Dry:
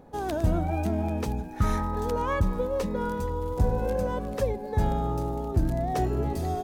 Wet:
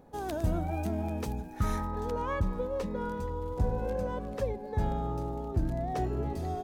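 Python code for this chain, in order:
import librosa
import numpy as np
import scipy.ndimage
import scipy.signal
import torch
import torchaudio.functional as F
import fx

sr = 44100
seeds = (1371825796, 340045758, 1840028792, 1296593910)

y = fx.high_shelf(x, sr, hz=6800.0, db=fx.steps((0.0, 4.0), (1.85, -7.5)))
y = y * 10.0 ** (-5.0 / 20.0)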